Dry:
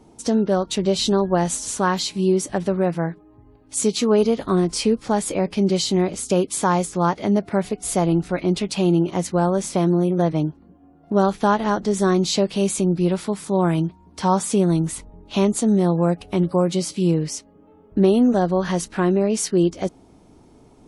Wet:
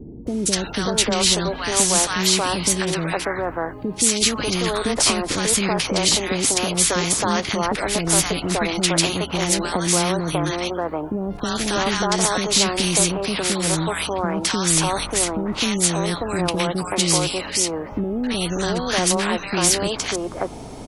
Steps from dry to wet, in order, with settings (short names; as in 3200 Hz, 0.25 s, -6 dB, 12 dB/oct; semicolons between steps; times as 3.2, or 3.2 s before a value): limiter -13.5 dBFS, peak gain reduction 8.5 dB; three bands offset in time lows, highs, mids 0.27/0.59 s, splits 370/1300 Hz; spectral compressor 2:1; gain +6 dB